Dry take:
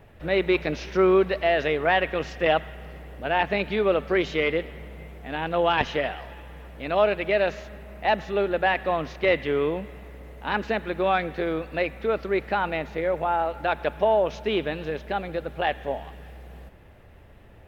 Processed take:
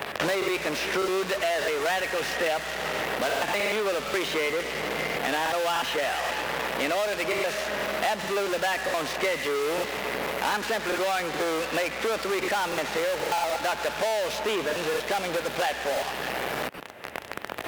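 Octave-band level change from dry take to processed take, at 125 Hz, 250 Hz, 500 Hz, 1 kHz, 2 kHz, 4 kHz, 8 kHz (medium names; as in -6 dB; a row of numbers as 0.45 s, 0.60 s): -7.5 dB, -4.5 dB, -3.0 dB, -1.5 dB, +1.0 dB, +4.5 dB, no reading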